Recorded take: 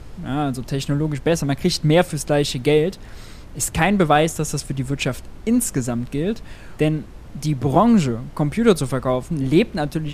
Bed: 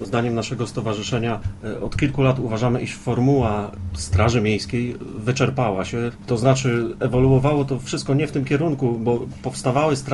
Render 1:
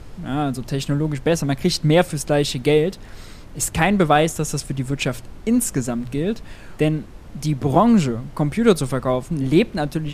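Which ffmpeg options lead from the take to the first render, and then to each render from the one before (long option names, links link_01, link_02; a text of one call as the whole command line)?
ffmpeg -i in.wav -af "bandreject=frequency=60:width_type=h:width=4,bandreject=frequency=120:width_type=h:width=4" out.wav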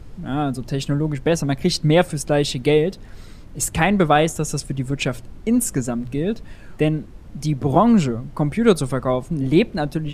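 ffmpeg -i in.wav -af "afftdn=noise_reduction=6:noise_floor=-39" out.wav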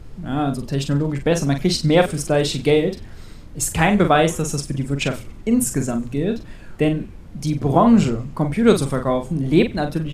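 ffmpeg -i in.wav -filter_complex "[0:a]asplit=2[link_01][link_02];[link_02]adelay=43,volume=-7dB[link_03];[link_01][link_03]amix=inputs=2:normalize=0,asplit=5[link_04][link_05][link_06][link_07][link_08];[link_05]adelay=94,afreqshift=-120,volume=-21dB[link_09];[link_06]adelay=188,afreqshift=-240,volume=-27dB[link_10];[link_07]adelay=282,afreqshift=-360,volume=-33dB[link_11];[link_08]adelay=376,afreqshift=-480,volume=-39.1dB[link_12];[link_04][link_09][link_10][link_11][link_12]amix=inputs=5:normalize=0" out.wav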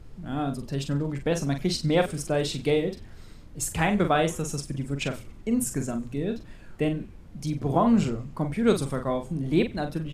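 ffmpeg -i in.wav -af "volume=-7.5dB" out.wav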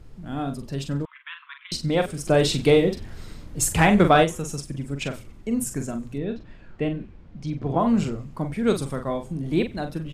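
ffmpeg -i in.wav -filter_complex "[0:a]asettb=1/sr,asplit=3[link_01][link_02][link_03];[link_01]atrim=end=1.054[link_04];[link_02]atrim=start=1.05:end=1.72,asetpts=PTS-STARTPTS,afade=type=in:duration=0.004:curve=qsin,afade=type=out:start_time=0.666:duration=0.004:curve=qsin,asuperpass=centerf=1900:order=20:qfactor=0.74[link_05];[link_03]atrim=start=1.716[link_06];[link_04][link_05]acrossfade=duration=0.004:curve1=hsin:curve2=qsin[link_07];[link_07][link_06]acrossfade=duration=0.004:curve1=qsin:curve2=hsin,asplit=3[link_08][link_09][link_10];[link_08]afade=type=out:start_time=2.26:duration=0.02[link_11];[link_09]acontrast=84,afade=type=in:start_time=2.26:duration=0.02,afade=type=out:start_time=4.23:duration=0.02[link_12];[link_10]afade=type=in:start_time=4.23:duration=0.02[link_13];[link_11][link_12][link_13]amix=inputs=3:normalize=0,asettb=1/sr,asplit=3[link_14][link_15][link_16];[link_14]atrim=end=6.184[link_17];[link_15]atrim=start=6.18:end=7.8,asetpts=PTS-STARTPTS,afade=type=in:duration=0.004:curve=qsin,afade=type=out:start_time=1.616:duration=0.004:curve=qsin,lowpass=4000[link_18];[link_16]atrim=start=7.796[link_19];[link_17][link_18]acrossfade=duration=0.004:curve1=hsin:curve2=qsin[link_20];[link_20][link_19]acrossfade=duration=0.004:curve1=qsin:curve2=hsin" out.wav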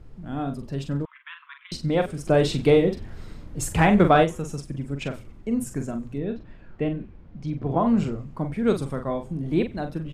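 ffmpeg -i in.wav -af "highshelf=frequency=3100:gain=-9" out.wav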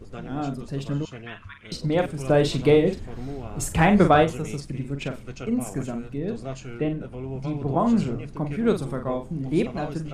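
ffmpeg -i in.wav -i bed.wav -filter_complex "[1:a]volume=-18dB[link_01];[0:a][link_01]amix=inputs=2:normalize=0" out.wav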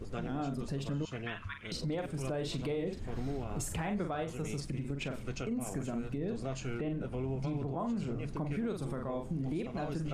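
ffmpeg -i in.wav -af "acompressor=threshold=-31dB:ratio=4,alimiter=level_in=3.5dB:limit=-24dB:level=0:latency=1:release=52,volume=-3.5dB" out.wav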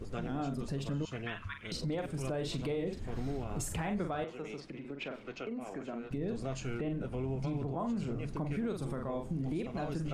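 ffmpeg -i in.wav -filter_complex "[0:a]asettb=1/sr,asplit=3[link_01][link_02][link_03];[link_01]atrim=end=4.244[link_04];[link_02]atrim=start=4.24:end=6.11,asetpts=PTS-STARTPTS,afade=type=in:duration=0.004:curve=qsin,afade=type=out:start_time=1.866:duration=0.004:curve=qsin,acrossover=split=240 4500:gain=0.112 1 0.0794[link_05][link_06][link_07];[link_05][link_06][link_07]amix=inputs=3:normalize=0[link_08];[link_03]atrim=start=6.106[link_09];[link_04][link_08]acrossfade=duration=0.004:curve1=hsin:curve2=qsin[link_10];[link_10][link_09]acrossfade=duration=0.004:curve1=qsin:curve2=hsin" out.wav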